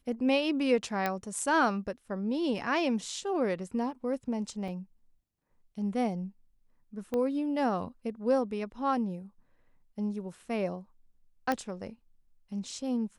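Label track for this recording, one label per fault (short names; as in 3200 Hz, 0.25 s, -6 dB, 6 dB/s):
1.060000	1.060000	pop -16 dBFS
4.680000	4.680000	gap 3.2 ms
7.140000	7.140000	pop -21 dBFS
11.520000	11.520000	pop -16 dBFS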